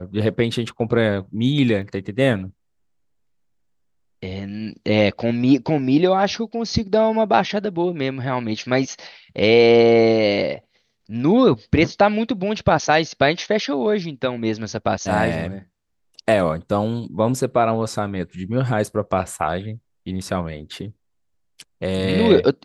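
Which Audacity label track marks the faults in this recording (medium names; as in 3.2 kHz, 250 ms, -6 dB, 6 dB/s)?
1.820000	1.820000	dropout 2 ms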